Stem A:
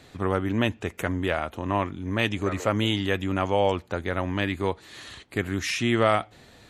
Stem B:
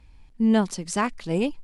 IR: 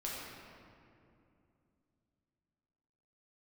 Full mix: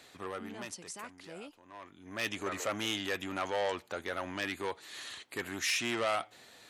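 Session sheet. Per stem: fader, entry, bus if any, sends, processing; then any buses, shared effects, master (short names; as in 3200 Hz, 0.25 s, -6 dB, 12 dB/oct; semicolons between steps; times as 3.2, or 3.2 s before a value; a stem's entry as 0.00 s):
-2.5 dB, 0.00 s, no send, soft clip -20.5 dBFS, distortion -9 dB; auto duck -19 dB, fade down 1.30 s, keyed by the second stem
-11.5 dB, 0.00 s, no send, limiter -21 dBFS, peak gain reduction 12 dB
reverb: off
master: HPF 620 Hz 6 dB/oct; high shelf 5500 Hz +5 dB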